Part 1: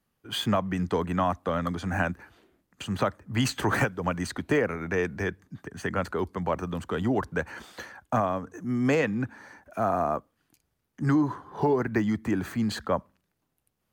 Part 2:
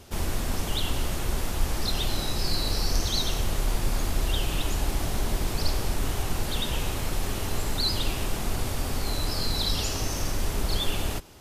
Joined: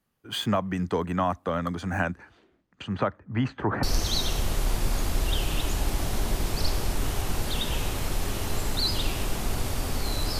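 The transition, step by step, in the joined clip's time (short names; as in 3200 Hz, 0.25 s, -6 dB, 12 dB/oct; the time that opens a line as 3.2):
part 1
2.04–3.83 LPF 10000 Hz -> 1100 Hz
3.83 switch to part 2 from 2.84 s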